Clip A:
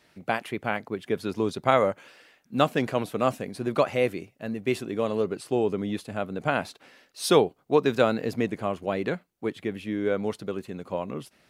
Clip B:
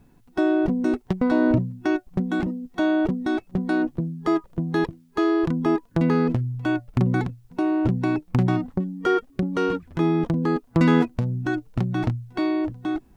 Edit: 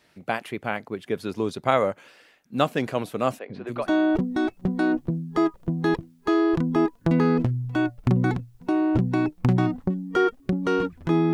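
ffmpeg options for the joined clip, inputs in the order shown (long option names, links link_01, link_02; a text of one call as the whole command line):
ffmpeg -i cue0.wav -i cue1.wav -filter_complex "[0:a]asettb=1/sr,asplit=3[link_01][link_02][link_03];[link_01]atrim=end=3.394[link_04];[link_02]atrim=start=3.39:end=3.91,asetpts=PTS-STARTPTS,afade=type=in:duration=0.004:curve=qsin,afade=type=out:start_time=0.516:duration=0.004:curve=qsin,acrossover=split=350|3800[link_05][link_06][link_07];[link_05]adelay=100[link_08];[link_07]adelay=280[link_09];[link_08][link_06][link_09]amix=inputs=3:normalize=0,atrim=end_sample=22932[link_10];[link_03]atrim=start=3.906[link_11];[link_04][link_10]acrossfade=duration=0.004:curve1=hsin:curve2=qsin[link_12];[link_12][link_11]acrossfade=duration=0.004:curve1=qsin:curve2=hsin,apad=whole_dur=11.33,atrim=end=11.33,atrim=end=3.91,asetpts=PTS-STARTPTS[link_13];[1:a]atrim=start=2.61:end=10.23,asetpts=PTS-STARTPTS[link_14];[link_13][link_14]acrossfade=duration=0.2:curve1=tri:curve2=tri" out.wav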